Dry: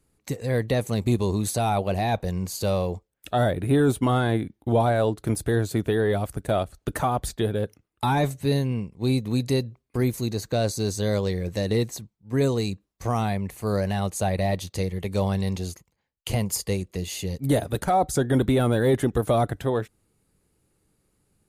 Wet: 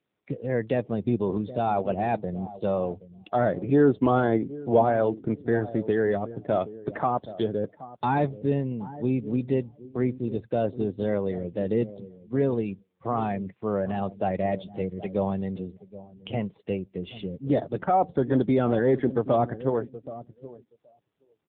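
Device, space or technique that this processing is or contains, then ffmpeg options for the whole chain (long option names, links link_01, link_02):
mobile call with aggressive noise cancelling: -filter_complex "[0:a]asettb=1/sr,asplit=3[link_01][link_02][link_03];[link_01]atrim=end=3.704[link_04];[link_02]atrim=start=3.7:end=4.82,asetpts=PTS-STARTPTS,afade=type=in:duration=0.004:curve=qsin,afade=type=out:start_time=1.116:duration=0.004:curve=qsin,adynamicequalizer=threshold=0.0282:dfrequency=470:dqfactor=0.91:tfrequency=470:tqfactor=0.91:attack=5:release=100:ratio=0.375:range=2:mode=boostabove:tftype=bell[link_05];[link_03]atrim=start=4.816[link_06];[link_04][link_05]acrossfade=duration=0.004:curve1=hsin:curve2=qsin[link_07];[link_07][link_06]acrossfade=duration=0.004:curve1=qsin:curve2=hsin,asplit=3[link_08][link_09][link_10];[link_08]afade=type=out:start_time=18.48:duration=0.02[link_11];[link_09]bandreject=frequency=2900:width=20,afade=type=in:start_time=18.48:duration=0.02,afade=type=out:start_time=19.05:duration=0.02[link_12];[link_10]afade=type=in:start_time=19.05:duration=0.02[link_13];[link_11][link_12][link_13]amix=inputs=3:normalize=0,highpass=160,asplit=2[link_14][link_15];[link_15]adelay=774,lowpass=frequency=1500:poles=1,volume=-14.5dB,asplit=2[link_16][link_17];[link_17]adelay=774,lowpass=frequency=1500:poles=1,volume=0.19[link_18];[link_14][link_16][link_18]amix=inputs=3:normalize=0,afftdn=noise_reduction=17:noise_floor=-38" -ar 8000 -c:a libopencore_amrnb -b:a 7950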